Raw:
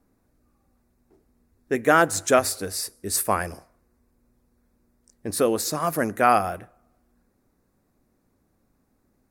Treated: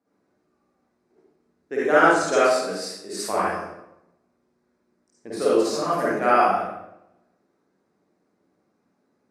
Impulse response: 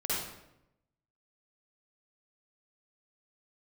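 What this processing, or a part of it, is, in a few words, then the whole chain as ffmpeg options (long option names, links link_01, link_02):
supermarket ceiling speaker: -filter_complex "[0:a]asettb=1/sr,asplit=3[link_01][link_02][link_03];[link_01]atrim=end=2.284[link_04];[link_02]atrim=start=2.28:end=3.25,asetpts=PTS-STARTPTS,afade=type=in:duration=0.004:curve=qsin,afade=type=out:start_time=0.966:duration=0.004:curve=qsin,highpass=160[link_05];[link_03]atrim=start=3.246[link_06];[link_04][link_05]acrossfade=duration=0.004:curve1=hsin:curve2=qsin[link_07];[link_07][link_06]acrossfade=duration=0.004:curve1=qsin:curve2=hsin,highpass=230,lowpass=5800[link_08];[1:a]atrim=start_sample=2205[link_09];[link_08][link_09]afir=irnorm=-1:irlink=0,volume=-5dB"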